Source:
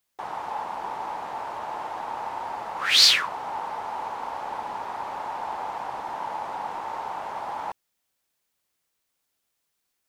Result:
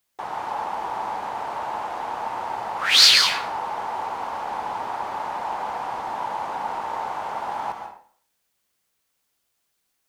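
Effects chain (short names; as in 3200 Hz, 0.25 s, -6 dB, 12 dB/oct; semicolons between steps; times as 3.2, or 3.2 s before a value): plate-style reverb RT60 0.51 s, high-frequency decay 0.85×, pre-delay 0.115 s, DRR 5 dB; gain +2.5 dB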